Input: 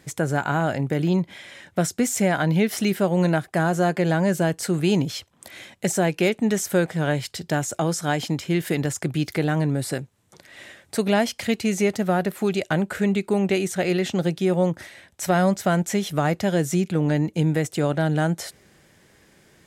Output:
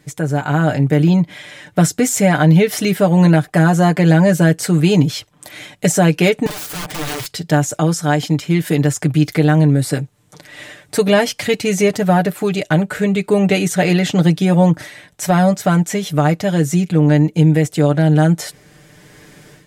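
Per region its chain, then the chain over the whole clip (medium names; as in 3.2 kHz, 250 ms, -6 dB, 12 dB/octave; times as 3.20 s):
6.46–7.26 s: compression 3:1, threshold -28 dBFS + bass shelf 60 Hz -4 dB + integer overflow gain 31 dB
whole clip: bass shelf 240 Hz +3.5 dB; comb 6.7 ms, depth 71%; level rider; trim -1 dB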